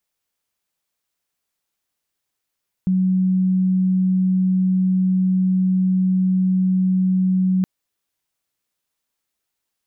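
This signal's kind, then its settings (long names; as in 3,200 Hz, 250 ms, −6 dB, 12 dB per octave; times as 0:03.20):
tone sine 186 Hz −14.5 dBFS 4.77 s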